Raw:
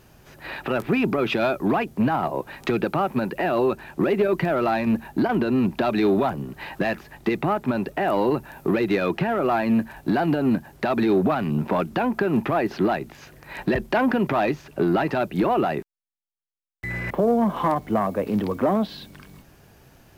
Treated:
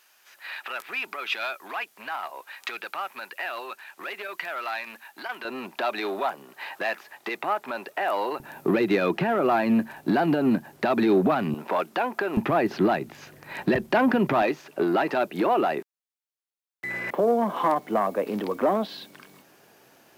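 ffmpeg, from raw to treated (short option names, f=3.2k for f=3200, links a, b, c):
-af "asetnsamples=n=441:p=0,asendcmd='5.45 highpass f 690;8.4 highpass f 170;11.54 highpass f 490;12.37 highpass f 120;14.42 highpass f 310',highpass=1.4k"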